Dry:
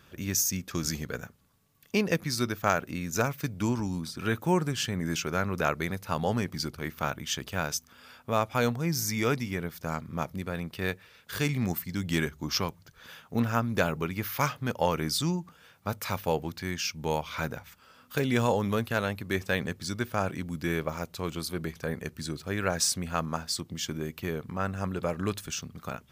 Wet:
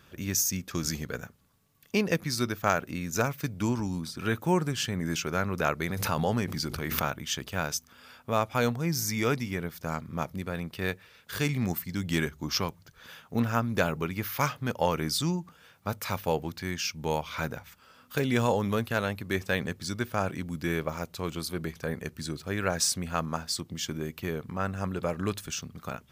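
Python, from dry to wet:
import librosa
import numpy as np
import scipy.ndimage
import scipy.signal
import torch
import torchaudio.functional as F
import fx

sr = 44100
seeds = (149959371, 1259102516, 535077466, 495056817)

y = fx.pre_swell(x, sr, db_per_s=36.0, at=(5.84, 7.07))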